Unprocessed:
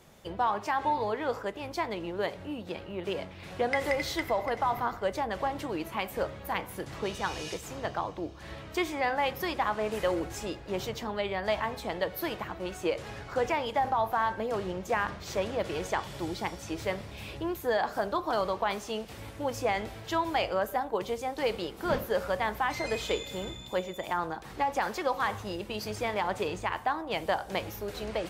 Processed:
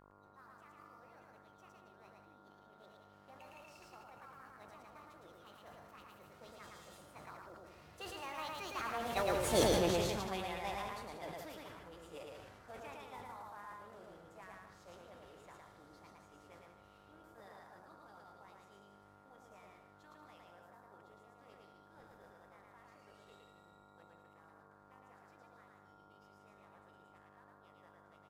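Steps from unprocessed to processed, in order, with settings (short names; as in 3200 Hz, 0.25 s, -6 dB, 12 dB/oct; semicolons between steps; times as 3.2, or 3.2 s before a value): CVSD 64 kbps; Doppler pass-by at 9.63, 30 m/s, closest 2.7 m; buzz 50 Hz, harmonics 28, -73 dBFS -1 dB/oct; formant shift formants +3 st; loudspeakers at several distances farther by 38 m -2 dB, 64 m -9 dB, 91 m -12 dB; sustainer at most 32 dB/s; gain +6.5 dB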